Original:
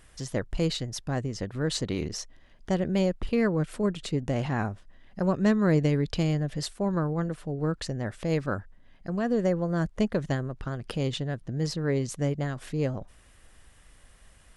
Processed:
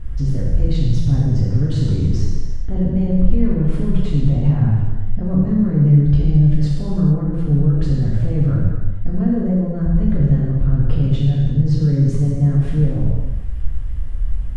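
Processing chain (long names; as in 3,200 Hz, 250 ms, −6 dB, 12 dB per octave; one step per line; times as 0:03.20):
in parallel at −6.5 dB: hard clipping −25.5 dBFS, distortion −9 dB
on the sum: low-shelf EQ 280 Hz +11 dB
brickwall limiter −23.5 dBFS, peak gain reduction 18 dB
RIAA equalisation playback
on a send: feedback echo with a high-pass in the loop 110 ms, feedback 41%, level −18 dB
on the sum: reverb whose tail is shaped and stops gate 480 ms falling, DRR −6 dB
level −2.5 dB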